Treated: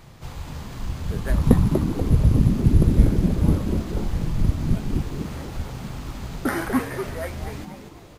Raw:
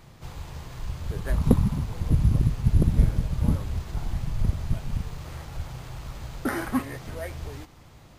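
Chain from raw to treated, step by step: frequency-shifting echo 0.241 s, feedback 34%, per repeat +130 Hz, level -8 dB; gain +3.5 dB

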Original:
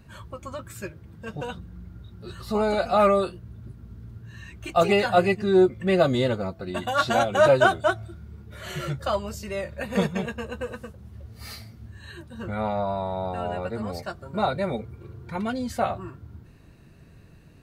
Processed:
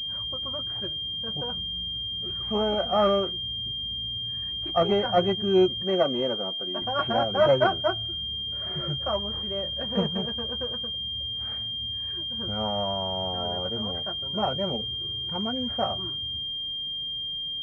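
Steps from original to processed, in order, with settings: 5.83–6.82 HPF 260 Hz 12 dB/oct; pulse-width modulation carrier 3200 Hz; gain -2.5 dB

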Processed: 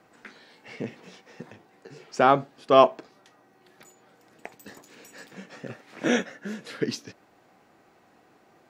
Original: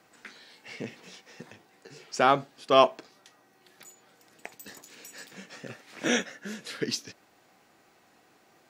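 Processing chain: high shelf 2200 Hz -10.5 dB; gain +4.5 dB

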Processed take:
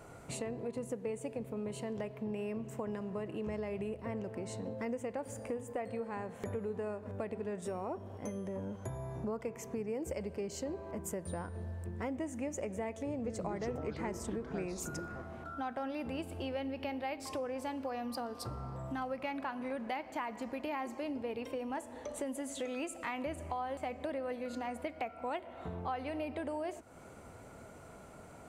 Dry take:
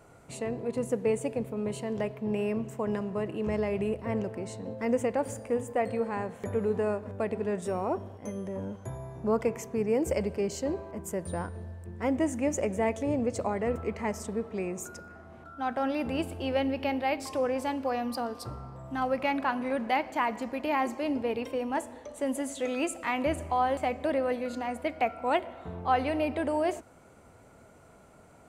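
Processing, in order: compressor 4:1, threshold -41 dBFS, peak gain reduction 17 dB; 13.06–15.22 echoes that change speed 0.181 s, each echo -5 st, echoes 3, each echo -6 dB; gain +3 dB

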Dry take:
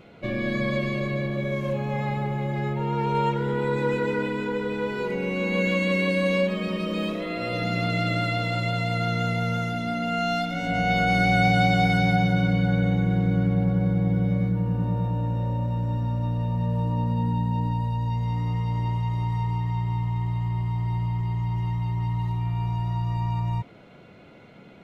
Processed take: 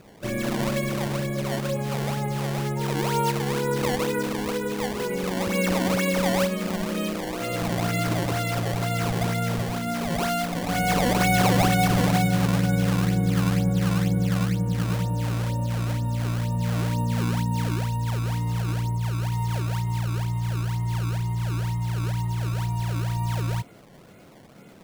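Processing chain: 18.74–19.32 bell 3100 Hz -14 dB 1.9 oct; decimation with a swept rate 20×, swing 160% 2.1 Hz

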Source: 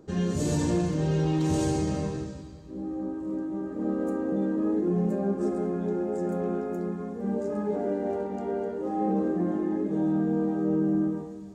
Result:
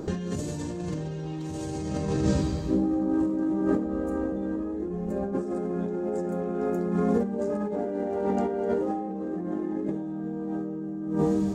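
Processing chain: 3.86–5.32 resonant low shelf 100 Hz +13 dB, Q 1.5; negative-ratio compressor -37 dBFS, ratio -1; gain +8 dB

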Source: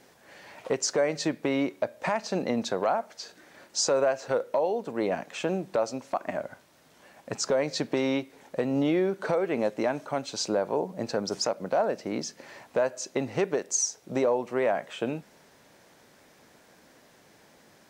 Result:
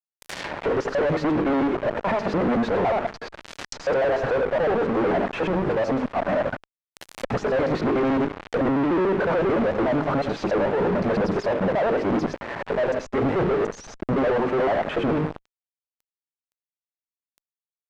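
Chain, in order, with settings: local time reversal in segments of 73 ms; de-hum 51.13 Hz, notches 9; fuzz box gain 54 dB, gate -46 dBFS; limiter -18.5 dBFS, peak gain reduction 8 dB; treble ducked by the level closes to 1600 Hz, closed at -24.5 dBFS

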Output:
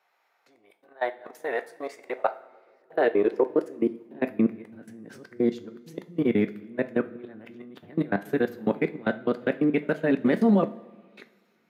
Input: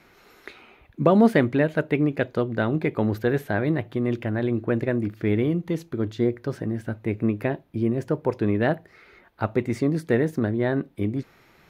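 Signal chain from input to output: whole clip reversed; dynamic EQ 140 Hz, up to -8 dB, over -40 dBFS, Q 1.6; level quantiser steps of 24 dB; two-slope reverb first 0.31 s, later 1.6 s, from -16 dB, DRR 8.5 dB; high-pass sweep 740 Hz -> 200 Hz, 1.84–4.56

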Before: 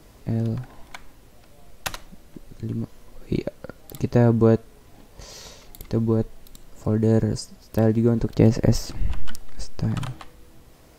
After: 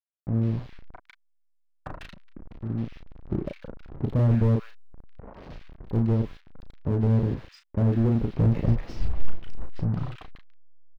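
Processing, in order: level-crossing sampler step -32.5 dBFS; air absorption 320 m; doubler 35 ms -6 dB; bands offset in time lows, highs 0.15 s, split 1600 Hz; slew limiter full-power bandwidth 35 Hz; gain -3 dB

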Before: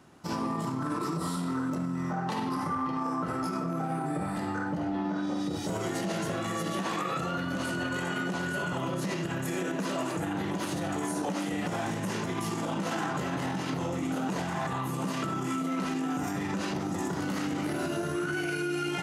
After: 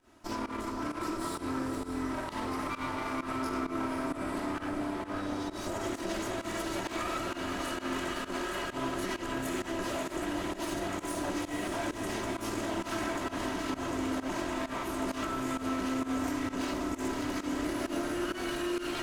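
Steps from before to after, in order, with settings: minimum comb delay 3.1 ms; diffused feedback echo 0.528 s, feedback 69%, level -6 dB; pump 131 bpm, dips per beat 1, -18 dB, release 0.115 s; gain -2 dB

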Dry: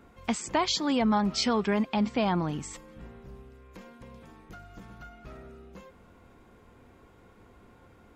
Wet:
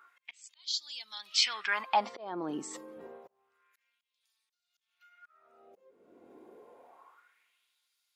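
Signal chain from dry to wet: auto swell 0.624 s; LFO high-pass sine 0.28 Hz 330–4400 Hz; spectral noise reduction 8 dB

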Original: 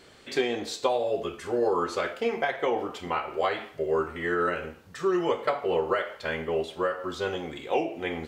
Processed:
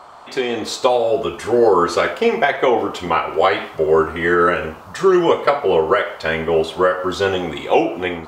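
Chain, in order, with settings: AGC gain up to 12 dB; band noise 580–1300 Hz -42 dBFS; gain +1 dB

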